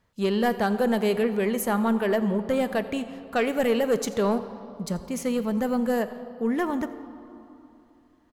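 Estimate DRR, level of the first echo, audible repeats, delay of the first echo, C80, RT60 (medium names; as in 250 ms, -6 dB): 10.5 dB, -20.0 dB, 1, 85 ms, 12.5 dB, 2.9 s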